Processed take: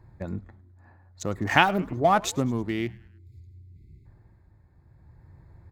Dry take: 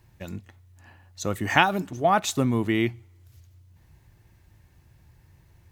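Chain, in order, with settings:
adaptive Wiener filter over 15 samples
in parallel at −1 dB: downward compressor, threshold −33 dBFS, peak gain reduction 19 dB
on the sum: time-frequency box erased 0:03.11–0:04.06, 440–2,000 Hz
amplitude tremolo 0.54 Hz, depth 55%
echo with shifted repeats 104 ms, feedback 50%, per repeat −150 Hz, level −22 dB

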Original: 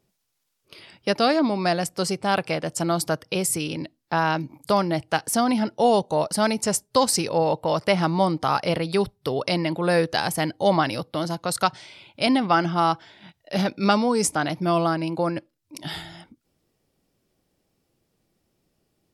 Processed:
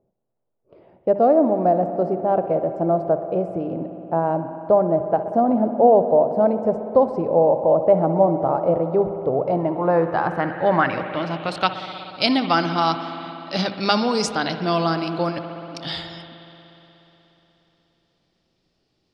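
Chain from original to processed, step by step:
mains-hum notches 50/100/150/200 Hz
spring reverb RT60 3.7 s, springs 60 ms, chirp 30 ms, DRR 8 dB
low-pass filter sweep 630 Hz → 4,600 Hz, 0:09.34–0:12.17

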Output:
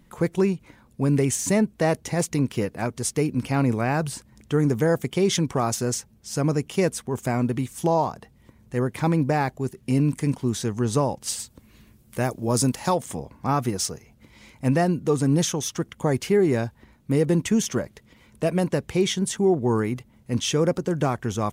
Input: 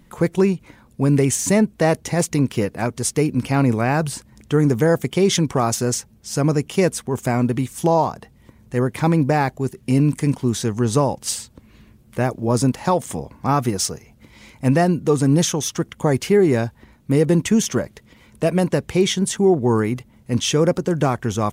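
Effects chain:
0:11.38–0:12.94: high-shelf EQ 6,000 Hz → 3,800 Hz +10 dB
level −4.5 dB

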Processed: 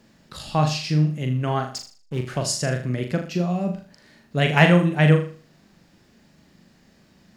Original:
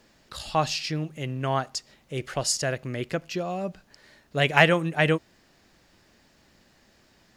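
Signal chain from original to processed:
parametric band 180 Hz +10.5 dB 1.4 octaves
0:01.76–0:02.23: slack as between gear wheels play −33 dBFS
on a send: flutter between parallel walls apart 6.8 metres, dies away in 0.41 s
on the sum: level −1 dB

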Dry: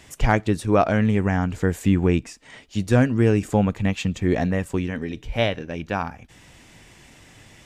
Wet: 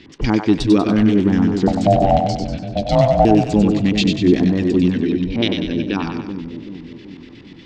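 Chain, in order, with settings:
low-pass that shuts in the quiet parts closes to 2,300 Hz, open at −17.5 dBFS
drawn EQ curve 100 Hz 0 dB, 320 Hz +15 dB, 650 Hz −9 dB, 4,800 Hz +11 dB
in parallel at 0 dB: brickwall limiter −16 dBFS, peak gain reduction 17 dB
0:01.67–0:03.25: on the sum: ring modulation 400 Hz
auto-filter low-pass square 8.3 Hz 980–4,300 Hz
on a send: echo with a time of its own for lows and highs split 480 Hz, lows 382 ms, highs 96 ms, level −5.5 dB
on the sum: level −5.5 dB

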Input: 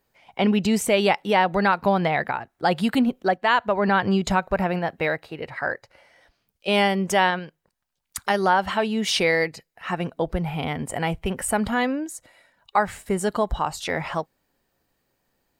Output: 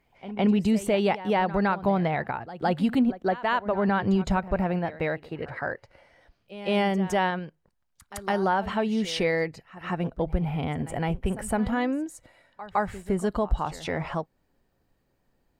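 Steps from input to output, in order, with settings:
spectral tilt −2 dB per octave
in parallel at −2 dB: downward compressor, threshold −30 dBFS, peak gain reduction 17 dB
on the sum: echo ahead of the sound 161 ms −15.5 dB
level −7 dB

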